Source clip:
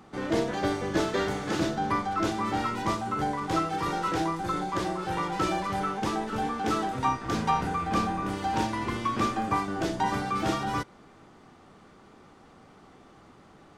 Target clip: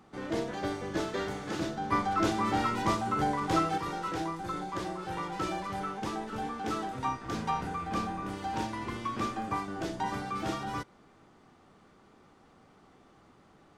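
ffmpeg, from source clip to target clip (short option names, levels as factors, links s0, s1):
-filter_complex "[0:a]asettb=1/sr,asplit=3[s0][s1][s2];[s0]atrim=end=1.924[s3];[s1]atrim=start=1.92:end=3.78,asetpts=PTS-STARTPTS,afade=t=in:d=0.004:c=qsin,afade=t=out:st=1.856:d=0.004:c=qsin,acontrast=51[s4];[s2]atrim=start=3.776[s5];[s3][s4]acrossfade=d=0.004:c1=hsin:c2=qsin[s6];[s6][s5]acrossfade=d=0.004:c1=qsin:c2=hsin,volume=0.501"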